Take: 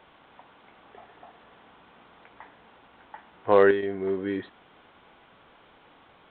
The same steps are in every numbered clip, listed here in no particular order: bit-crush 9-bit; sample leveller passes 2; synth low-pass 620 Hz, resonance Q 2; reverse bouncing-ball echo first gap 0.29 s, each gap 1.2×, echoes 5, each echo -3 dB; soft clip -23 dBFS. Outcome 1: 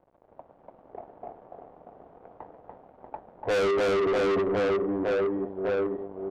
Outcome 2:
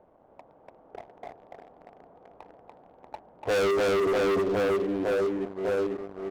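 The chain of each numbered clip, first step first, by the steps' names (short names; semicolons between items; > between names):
reverse bouncing-ball echo > sample leveller > bit-crush > synth low-pass > soft clip; reverse bouncing-ball echo > bit-crush > synth low-pass > sample leveller > soft clip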